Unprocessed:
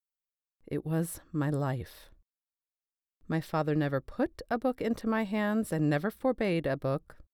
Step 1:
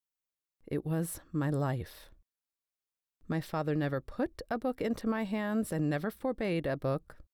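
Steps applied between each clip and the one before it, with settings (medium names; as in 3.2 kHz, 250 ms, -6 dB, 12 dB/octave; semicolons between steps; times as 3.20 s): peak limiter -22.5 dBFS, peak gain reduction 5.5 dB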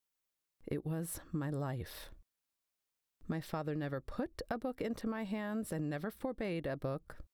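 compression 6:1, threshold -39 dBFS, peak gain reduction 12 dB; trim +4 dB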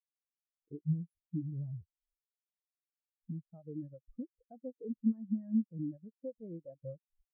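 spectral contrast expander 4:1; trim +2.5 dB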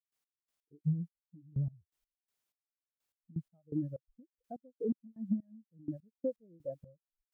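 compression, threshold -38 dBFS, peak gain reduction 12.5 dB; trance gate ".x..x..xx..." 125 bpm -24 dB; trim +9.5 dB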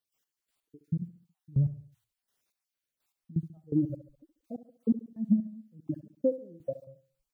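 random holes in the spectrogram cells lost 30%; feedback delay 69 ms, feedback 42%, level -14 dB; trim +8 dB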